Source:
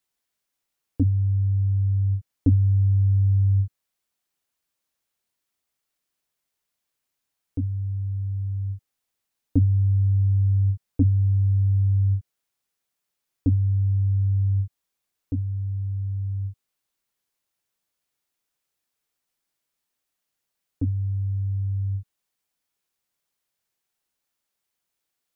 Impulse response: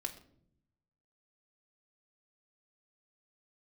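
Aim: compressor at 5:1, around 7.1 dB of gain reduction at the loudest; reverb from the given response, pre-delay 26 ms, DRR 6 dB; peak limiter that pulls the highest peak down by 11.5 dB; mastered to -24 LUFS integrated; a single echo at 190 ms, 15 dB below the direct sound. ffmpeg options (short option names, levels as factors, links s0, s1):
-filter_complex "[0:a]acompressor=threshold=0.0794:ratio=5,alimiter=limit=0.0631:level=0:latency=1,aecho=1:1:190:0.178,asplit=2[s0][s1];[1:a]atrim=start_sample=2205,adelay=26[s2];[s1][s2]afir=irnorm=-1:irlink=0,volume=0.531[s3];[s0][s3]amix=inputs=2:normalize=0,volume=2.99"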